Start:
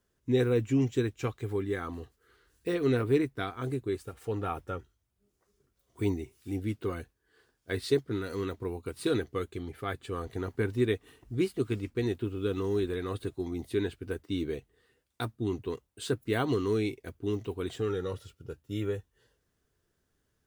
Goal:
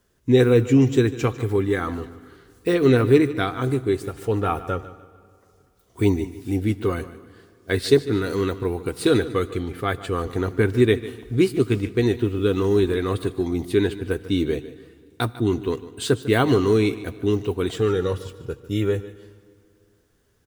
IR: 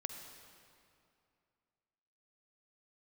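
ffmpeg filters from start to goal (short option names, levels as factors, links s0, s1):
-filter_complex "[0:a]aecho=1:1:149|298|447:0.158|0.0523|0.0173,asplit=2[s0][s1];[1:a]atrim=start_sample=2205[s2];[s1][s2]afir=irnorm=-1:irlink=0,volume=0.299[s3];[s0][s3]amix=inputs=2:normalize=0,volume=2.66"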